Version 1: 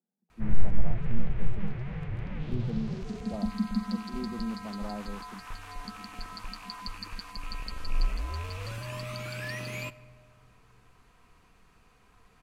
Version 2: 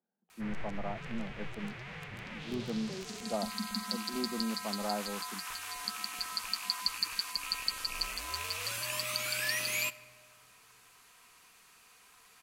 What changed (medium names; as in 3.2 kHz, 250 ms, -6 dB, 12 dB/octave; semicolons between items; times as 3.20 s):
speech +8.5 dB; master: add tilt EQ +4.5 dB/octave